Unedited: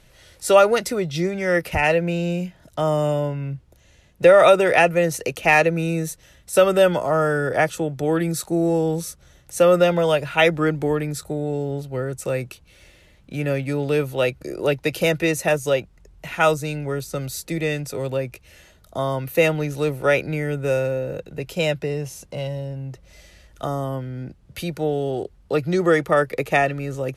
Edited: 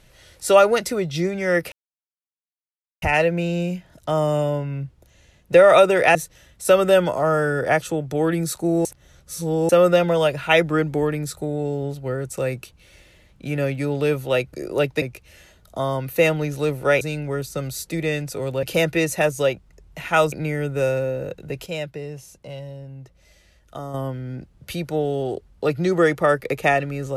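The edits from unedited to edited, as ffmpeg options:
-filter_complex "[0:a]asplit=11[s0][s1][s2][s3][s4][s5][s6][s7][s8][s9][s10];[s0]atrim=end=1.72,asetpts=PTS-STARTPTS,afade=t=out:st=1.716:d=0.004:c=hsin,apad=pad_dur=1.3[s11];[s1]atrim=start=1.72:end=4.852,asetpts=PTS-STARTPTS,afade=t=in:d=0.004:c=hsin[s12];[s2]atrim=start=6.028:end=8.732[s13];[s3]atrim=start=8.728:end=9.572,asetpts=PTS-STARTPTS,areverse[s14];[s4]atrim=start=9.568:end=14.902[s15];[s5]atrim=start=18.208:end=20.202[s16];[s6]atrim=start=16.588:end=18.212[s17];[s7]atrim=start=14.898:end=16.592[s18];[s8]atrim=start=20.198:end=21.542[s19];[s9]atrim=start=21.538:end=23.822,asetpts=PTS-STARTPTS,volume=0.447[s20];[s10]atrim=start=23.818[s21];[s11][s12]concat=n=2:v=0:a=1[s22];[s22][s13]acrossfade=d=0.004:c1=hsin:c2=hsin[s23];[s23][s14]acrossfade=d=0.004:c1=hsin:c2=hsin[s24];[s24][s15]acrossfade=d=0.004:c1=hsin:c2=hsin[s25];[s25][s16]acrossfade=d=0.004:c1=hsin:c2=hsin[s26];[s26][s17]acrossfade=d=0.004:c1=hsin:c2=hsin[s27];[s27][s18]acrossfade=d=0.004:c1=hsin:c2=hsin[s28];[s28][s19]acrossfade=d=0.004:c1=hsin:c2=hsin[s29];[s29][s20]acrossfade=d=0.004:c1=hsin:c2=hsin[s30];[s30][s21]acrossfade=d=0.004:c1=hsin:c2=hsin"

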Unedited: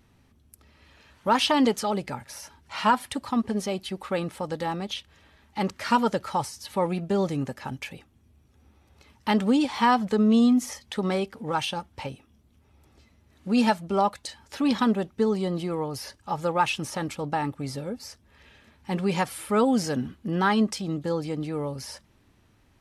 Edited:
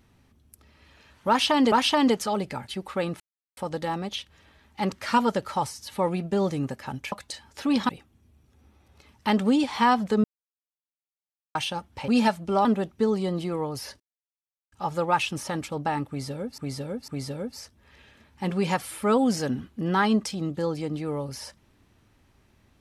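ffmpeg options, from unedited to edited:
-filter_complex "[0:a]asplit=13[s0][s1][s2][s3][s4][s5][s6][s7][s8][s9][s10][s11][s12];[s0]atrim=end=1.722[s13];[s1]atrim=start=1.288:end=2.252[s14];[s2]atrim=start=3.828:end=4.35,asetpts=PTS-STARTPTS,afade=t=out:st=0.518:d=0.004:c=hsin,apad=pad_dur=0.37[s15];[s3]atrim=start=4.35:end=7.902,asetpts=PTS-STARTPTS,afade=t=in:d=0.004:c=hsin[s16];[s4]atrim=start=14.068:end=14.842[s17];[s5]atrim=start=7.898:end=10.25,asetpts=PTS-STARTPTS,afade=t=out:st=2.348:d=0.004:c=hsin[s18];[s6]atrim=start=10.25:end=11.56,asetpts=PTS-STARTPTS,volume=0[s19];[s7]atrim=start=11.56:end=12.092,asetpts=PTS-STARTPTS,afade=t=in:d=0.004:c=hsin[s20];[s8]atrim=start=13.498:end=14.072[s21];[s9]atrim=start=14.838:end=16.19,asetpts=PTS-STARTPTS,afade=t=out:st=1.348:d=0.004:c=hsin,apad=pad_dur=0.72[s22];[s10]atrim=start=16.19:end=18.052,asetpts=PTS-STARTPTS,afade=t=in:d=0.004:c=hsin[s23];[s11]atrim=start=17.548:end=18.052[s24];[s12]atrim=start=17.548[s25];[s13][s14]acrossfade=d=0.004:c1=hsin:c2=hsin[s26];[s15][s16]concat=n=2:v=0:a=1[s27];[s26][s27]acrossfade=d=0.004:c1=hsin:c2=hsin[s28];[s28][s17]acrossfade=d=0.004:c1=hsin:c2=hsin[s29];[s18][s19][s20]concat=n=3:v=0:a=1[s30];[s29][s30]acrossfade=d=0.004:c1=hsin:c2=hsin[s31];[s31][s21]acrossfade=d=0.004:c1=hsin:c2=hsin[s32];[s22][s23]concat=n=2:v=0:a=1[s33];[s32][s33]acrossfade=d=0.004:c1=hsin:c2=hsin[s34];[s34][s24]acrossfade=d=0.004:c1=hsin:c2=hsin[s35];[s35][s25]acrossfade=d=0.004:c1=hsin:c2=hsin"

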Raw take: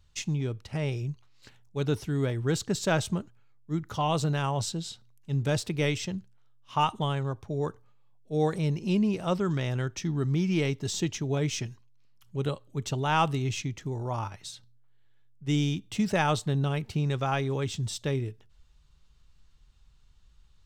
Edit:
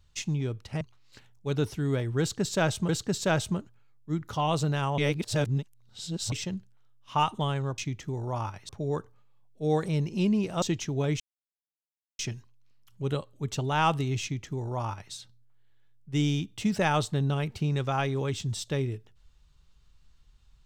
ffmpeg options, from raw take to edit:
-filter_complex "[0:a]asplit=9[s0][s1][s2][s3][s4][s5][s6][s7][s8];[s0]atrim=end=0.812[s9];[s1]atrim=start=1.108:end=3.192[s10];[s2]atrim=start=2.498:end=4.592[s11];[s3]atrim=start=4.588:end=5.932,asetpts=PTS-STARTPTS,areverse[s12];[s4]atrim=start=5.928:end=7.392[s13];[s5]atrim=start=13.558:end=14.472[s14];[s6]atrim=start=7.388:end=9.322[s15];[s7]atrim=start=10.948:end=11.53,asetpts=PTS-STARTPTS,afade=t=out:st=0.578:d=0.004:c=hsin,apad=pad_dur=0.99[s16];[s8]atrim=start=11.53,asetpts=PTS-STARTPTS,afade=t=in:d=0.004:c=hsin[s17];[s9][s10]acrossfade=d=0.004:c1=hsin:c2=hsin[s18];[s18][s11]acrossfade=d=0.004:c1=hsin:c2=hsin[s19];[s19][s12]acrossfade=d=0.004:c1=hsin:c2=hsin[s20];[s20][s13]acrossfade=d=0.004:c1=hsin:c2=hsin[s21];[s21][s14]acrossfade=d=0.004:c1=hsin:c2=hsin[s22];[s22][s15]acrossfade=d=0.004:c1=hsin:c2=hsin[s23];[s16][s17]concat=n=2:v=0:a=1[s24];[s23][s24]acrossfade=d=0.004:c1=hsin:c2=hsin"

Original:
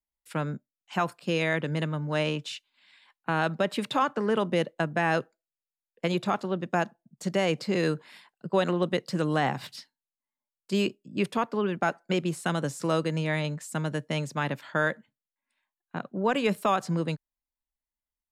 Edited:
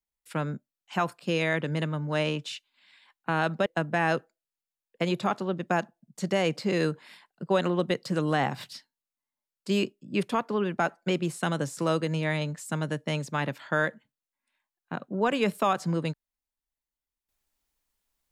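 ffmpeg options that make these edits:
-filter_complex "[0:a]asplit=2[s0][s1];[s0]atrim=end=3.662[s2];[s1]atrim=start=4.688[s3];[s2][s3]acrossfade=d=0.004:c1=hsin:c2=hsin"

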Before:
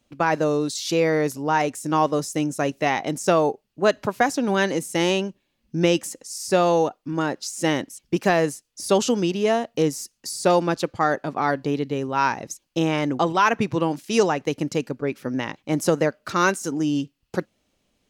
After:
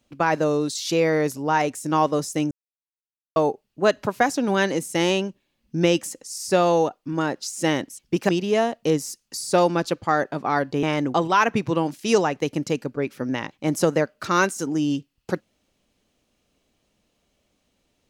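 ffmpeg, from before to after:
-filter_complex "[0:a]asplit=5[s0][s1][s2][s3][s4];[s0]atrim=end=2.51,asetpts=PTS-STARTPTS,afade=t=out:st=2.506:d=0.004:c=hsin[s5];[s1]atrim=start=2.51:end=3.36,asetpts=PTS-STARTPTS,volume=0[s6];[s2]atrim=start=3.36:end=8.292,asetpts=PTS-STARTPTS,afade=t=in:d=0.004:c=hsin[s7];[s3]atrim=start=9.208:end=11.752[s8];[s4]atrim=start=12.878[s9];[s5][s6][s7]concat=n=3:v=0:a=1[s10];[s10][s8]acrossfade=d=0.004:c1=hsin:c2=hsin[s11];[s11][s9]acrossfade=d=0.004:c1=hsin:c2=hsin"

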